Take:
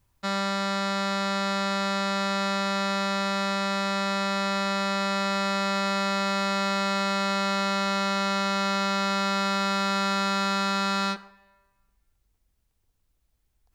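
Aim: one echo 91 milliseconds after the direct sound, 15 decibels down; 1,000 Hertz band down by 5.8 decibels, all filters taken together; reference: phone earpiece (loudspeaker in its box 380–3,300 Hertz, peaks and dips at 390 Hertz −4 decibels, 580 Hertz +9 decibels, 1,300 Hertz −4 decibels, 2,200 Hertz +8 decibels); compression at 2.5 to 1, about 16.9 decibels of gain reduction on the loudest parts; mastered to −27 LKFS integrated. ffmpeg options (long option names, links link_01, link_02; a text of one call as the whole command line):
ffmpeg -i in.wav -af "equalizer=frequency=1000:width_type=o:gain=-6.5,acompressor=threshold=-50dB:ratio=2.5,highpass=380,equalizer=frequency=390:width_type=q:width=4:gain=-4,equalizer=frequency=580:width_type=q:width=4:gain=9,equalizer=frequency=1300:width_type=q:width=4:gain=-4,equalizer=frequency=2200:width_type=q:width=4:gain=8,lowpass=frequency=3300:width=0.5412,lowpass=frequency=3300:width=1.3066,aecho=1:1:91:0.178,volume=17dB" out.wav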